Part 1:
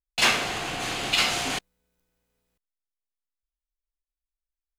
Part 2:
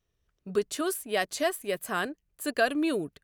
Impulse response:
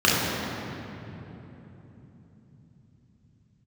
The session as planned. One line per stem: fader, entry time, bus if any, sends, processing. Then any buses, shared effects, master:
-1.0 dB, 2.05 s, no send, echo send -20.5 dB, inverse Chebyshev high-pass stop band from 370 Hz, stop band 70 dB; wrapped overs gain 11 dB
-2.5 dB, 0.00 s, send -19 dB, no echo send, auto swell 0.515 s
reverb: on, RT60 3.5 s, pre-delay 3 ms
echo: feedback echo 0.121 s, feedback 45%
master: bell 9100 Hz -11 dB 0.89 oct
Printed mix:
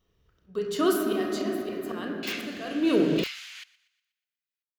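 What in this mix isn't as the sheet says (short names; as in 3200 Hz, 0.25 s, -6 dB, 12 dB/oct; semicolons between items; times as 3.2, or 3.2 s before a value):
stem 1 -1.0 dB -> -11.0 dB; stem 2 -2.5 dB -> +5.5 dB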